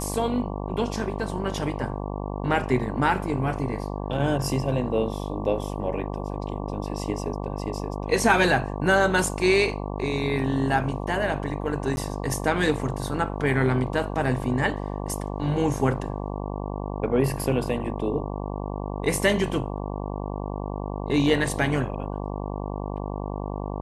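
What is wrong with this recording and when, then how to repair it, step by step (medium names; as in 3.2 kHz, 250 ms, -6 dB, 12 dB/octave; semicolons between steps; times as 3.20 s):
buzz 50 Hz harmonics 23 -31 dBFS
11.96–11.97 s: dropout 11 ms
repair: de-hum 50 Hz, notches 23; interpolate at 11.96 s, 11 ms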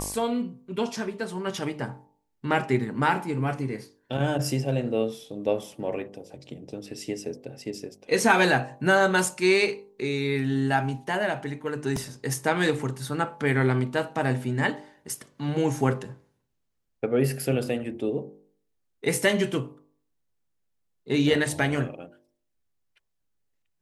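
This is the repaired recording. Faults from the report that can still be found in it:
nothing left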